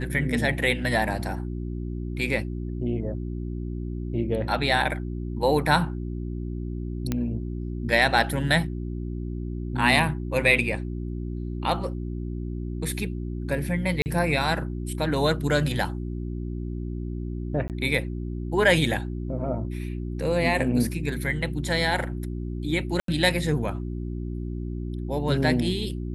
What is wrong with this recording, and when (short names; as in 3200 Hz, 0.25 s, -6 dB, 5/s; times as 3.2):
hum 60 Hz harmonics 6 -31 dBFS
7.12 pop -12 dBFS
14.02–14.06 gap 39 ms
17.68–17.7 gap 18 ms
23–23.08 gap 83 ms